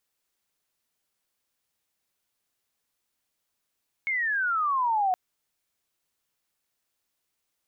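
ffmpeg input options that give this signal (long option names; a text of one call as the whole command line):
ffmpeg -f lavfi -i "aevalsrc='pow(10,(-24.5+3.5*t/1.07)/20)*sin(2*PI*2200*1.07/log(720/2200)*(exp(log(720/2200)*t/1.07)-1))':duration=1.07:sample_rate=44100" out.wav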